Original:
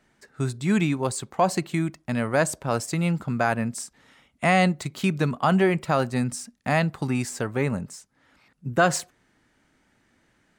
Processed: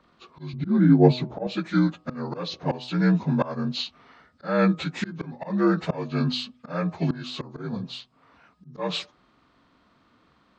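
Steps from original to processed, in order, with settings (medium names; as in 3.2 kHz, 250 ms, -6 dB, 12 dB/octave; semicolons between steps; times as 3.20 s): frequency axis rescaled in octaves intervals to 80%; 0.53–1.47 s: tilt shelf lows +9 dB, about 890 Hz; slow attack 384 ms; de-hum 125 Hz, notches 10; trim +5.5 dB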